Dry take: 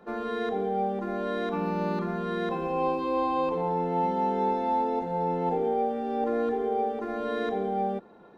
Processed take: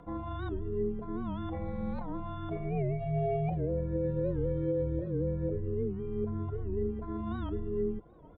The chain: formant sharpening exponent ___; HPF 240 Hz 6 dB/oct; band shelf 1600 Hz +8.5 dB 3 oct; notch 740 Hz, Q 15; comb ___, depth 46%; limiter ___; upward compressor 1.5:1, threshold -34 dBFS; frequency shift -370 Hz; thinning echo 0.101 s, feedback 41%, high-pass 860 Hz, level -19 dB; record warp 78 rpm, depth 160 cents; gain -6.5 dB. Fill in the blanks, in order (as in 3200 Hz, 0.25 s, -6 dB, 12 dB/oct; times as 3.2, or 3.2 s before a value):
1.5, 7.3 ms, -16 dBFS